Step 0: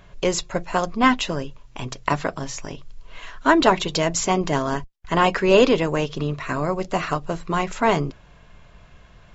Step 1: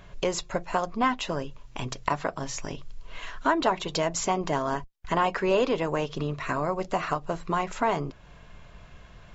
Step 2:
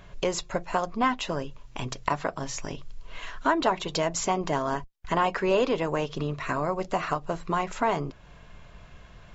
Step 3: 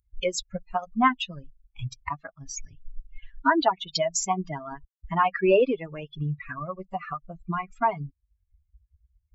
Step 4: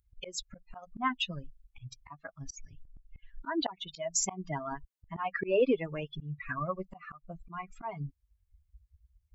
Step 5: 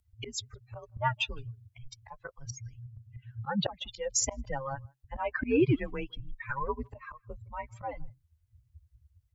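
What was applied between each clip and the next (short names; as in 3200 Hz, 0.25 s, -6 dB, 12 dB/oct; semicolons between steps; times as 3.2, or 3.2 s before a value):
dynamic EQ 870 Hz, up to +6 dB, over -32 dBFS, Q 0.77; compressor 2:1, threshold -30 dBFS, peak gain reduction 13.5 dB
nothing audible
per-bin expansion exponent 3; gain +7.5 dB
auto swell 0.29 s
speakerphone echo 0.16 s, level -29 dB; frequency shift -130 Hz; gain +1.5 dB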